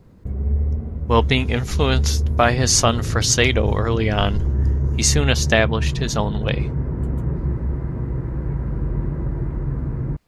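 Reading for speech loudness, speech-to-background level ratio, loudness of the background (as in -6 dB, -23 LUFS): -20.0 LUFS, 4.0 dB, -24.0 LUFS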